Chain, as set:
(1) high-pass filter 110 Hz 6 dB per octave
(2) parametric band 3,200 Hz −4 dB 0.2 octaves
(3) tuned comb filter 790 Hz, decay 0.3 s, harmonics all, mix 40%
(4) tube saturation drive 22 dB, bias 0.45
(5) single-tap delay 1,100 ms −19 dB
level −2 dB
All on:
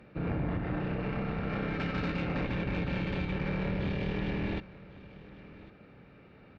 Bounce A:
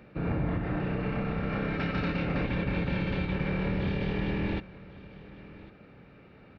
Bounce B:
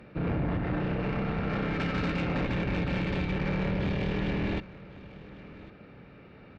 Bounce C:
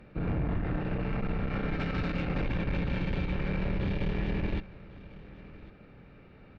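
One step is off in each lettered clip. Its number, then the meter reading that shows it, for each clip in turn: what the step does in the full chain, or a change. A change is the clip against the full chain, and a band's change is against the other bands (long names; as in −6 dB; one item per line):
4, change in integrated loudness +2.5 LU
3, change in crest factor −2.0 dB
1, 125 Hz band +2.5 dB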